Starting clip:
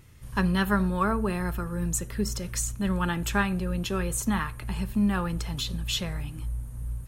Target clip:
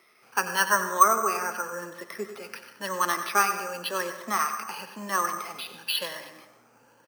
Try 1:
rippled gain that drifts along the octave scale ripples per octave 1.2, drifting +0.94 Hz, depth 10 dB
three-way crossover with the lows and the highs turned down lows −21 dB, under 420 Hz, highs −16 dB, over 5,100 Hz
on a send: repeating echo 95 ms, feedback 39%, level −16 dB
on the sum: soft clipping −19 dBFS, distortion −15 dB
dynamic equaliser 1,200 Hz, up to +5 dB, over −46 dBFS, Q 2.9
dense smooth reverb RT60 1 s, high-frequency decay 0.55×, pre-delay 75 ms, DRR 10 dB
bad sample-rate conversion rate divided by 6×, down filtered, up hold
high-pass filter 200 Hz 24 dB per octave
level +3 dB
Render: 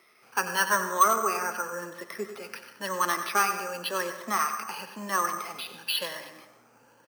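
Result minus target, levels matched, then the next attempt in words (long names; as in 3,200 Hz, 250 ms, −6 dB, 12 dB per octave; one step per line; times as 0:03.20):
soft clipping: distortion +13 dB
rippled gain that drifts along the octave scale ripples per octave 1.2, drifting +0.94 Hz, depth 10 dB
three-way crossover with the lows and the highs turned down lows −21 dB, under 420 Hz, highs −16 dB, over 5,100 Hz
on a send: repeating echo 95 ms, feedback 39%, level −16 dB
on the sum: soft clipping −10 dBFS, distortion −28 dB
dynamic equaliser 1,200 Hz, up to +5 dB, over −46 dBFS, Q 2.9
dense smooth reverb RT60 1 s, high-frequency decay 0.55×, pre-delay 75 ms, DRR 10 dB
bad sample-rate conversion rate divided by 6×, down filtered, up hold
high-pass filter 200 Hz 24 dB per octave
level +3 dB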